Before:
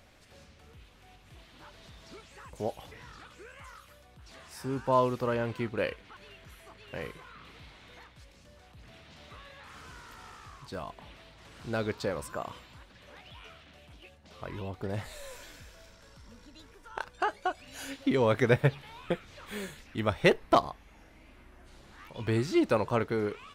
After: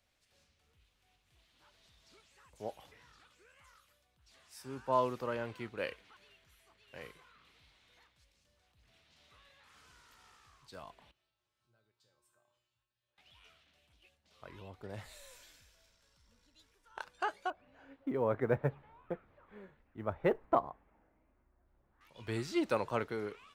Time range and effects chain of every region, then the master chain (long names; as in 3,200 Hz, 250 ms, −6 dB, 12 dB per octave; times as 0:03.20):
0:11.11–0:13.18: parametric band 2,100 Hz −5.5 dB 0.22 octaves + downward compressor 3 to 1, threshold −41 dBFS + tuned comb filter 120 Hz, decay 0.58 s, harmonics odd, mix 90%
0:17.50–0:22.01: low-pass filter 1,200 Hz + floating-point word with a short mantissa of 6 bits
whole clip: low-shelf EQ 340 Hz −6 dB; multiband upward and downward expander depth 40%; level −7.5 dB